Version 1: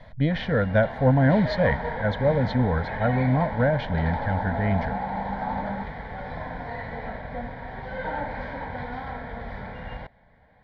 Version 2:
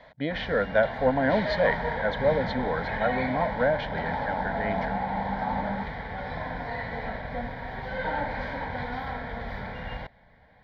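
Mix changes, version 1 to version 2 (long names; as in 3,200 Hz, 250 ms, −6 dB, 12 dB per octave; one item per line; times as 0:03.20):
speech: add band-pass filter 330–7,400 Hz
first sound: add high-shelf EQ 2,800 Hz +8 dB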